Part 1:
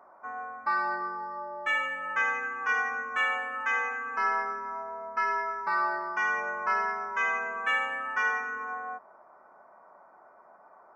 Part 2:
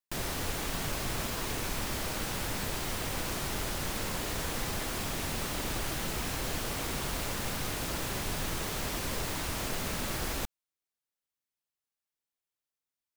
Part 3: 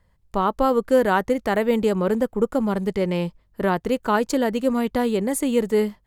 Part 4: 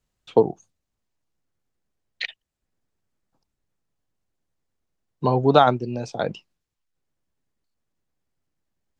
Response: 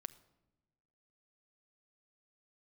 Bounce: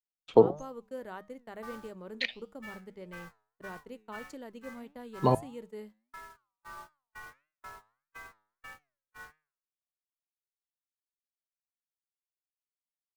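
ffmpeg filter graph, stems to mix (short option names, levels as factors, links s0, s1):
-filter_complex "[0:a]adynamicequalizer=threshold=0.0126:dfrequency=2400:dqfactor=0.84:tfrequency=2400:tqfactor=0.84:attack=5:release=100:ratio=0.375:range=2:mode=cutabove:tftype=bell,adelay=950,volume=0.282[s0];[1:a]equalizer=f=390:w=0.53:g=-5,adelay=1350,volume=0.211[s1];[2:a]volume=0.112[s2];[3:a]volume=1.19,asplit=3[s3][s4][s5];[s3]atrim=end=5.35,asetpts=PTS-STARTPTS,afade=t=out:st=5.346:d=0.004:c=hsin[s6];[s4]atrim=start=5.35:end=7.65,asetpts=PTS-STARTPTS,volume=0[s7];[s5]atrim=start=7.65,asetpts=PTS-STARTPTS,afade=t=in:d=0.004:c=hsin[s8];[s6][s7][s8]concat=n=3:v=0:a=1[s9];[s0][s1]amix=inputs=2:normalize=0,agate=range=0.0224:threshold=0.0126:ratio=16:detection=peak,alimiter=level_in=2.51:limit=0.0631:level=0:latency=1:release=112,volume=0.398,volume=1[s10];[s2][s9][s10]amix=inputs=3:normalize=0,bandreject=f=50:t=h:w=6,bandreject=f=100:t=h:w=6,bandreject=f=150:t=h:w=6,bandreject=f=200:t=h:w=6,agate=range=0.02:threshold=0.00562:ratio=16:detection=peak,flanger=delay=6.4:depth=3:regen=89:speed=1.6:shape=sinusoidal"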